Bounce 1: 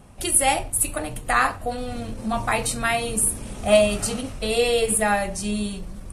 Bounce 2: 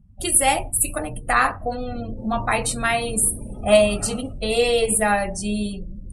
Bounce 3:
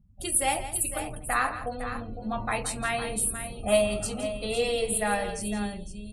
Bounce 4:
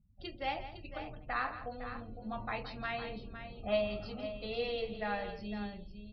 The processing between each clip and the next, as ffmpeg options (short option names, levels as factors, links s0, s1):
-af "afftdn=nr=33:nf=-37,volume=1.19"
-af "aecho=1:1:168|507:0.237|0.299,volume=0.398"
-af "aresample=11025,aresample=44100,volume=0.355"